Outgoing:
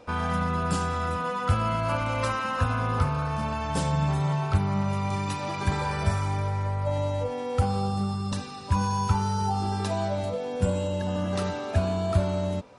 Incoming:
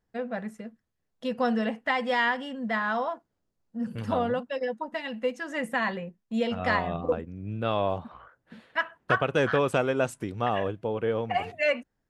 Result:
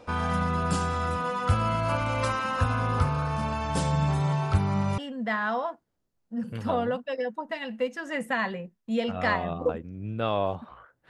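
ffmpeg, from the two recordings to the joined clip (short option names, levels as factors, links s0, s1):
-filter_complex "[0:a]apad=whole_dur=11.09,atrim=end=11.09,atrim=end=4.982[s0];[1:a]atrim=start=2.408:end=8.52[s1];[s0][s1]acrossfade=d=0.004:c1=hsin:c2=hsin"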